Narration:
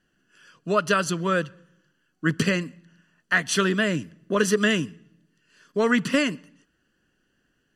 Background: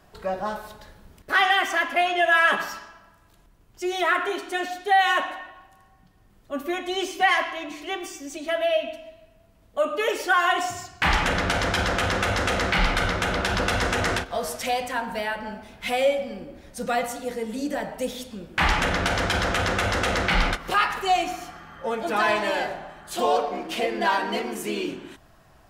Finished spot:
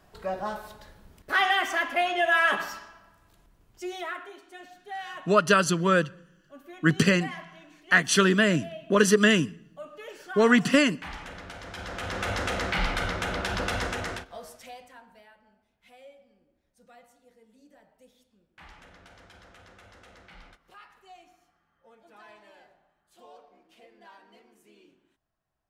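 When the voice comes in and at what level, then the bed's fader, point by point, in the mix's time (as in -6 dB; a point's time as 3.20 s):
4.60 s, +1.5 dB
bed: 3.68 s -3.5 dB
4.33 s -18.5 dB
11.62 s -18.5 dB
12.29 s -5.5 dB
13.79 s -5.5 dB
15.43 s -29.5 dB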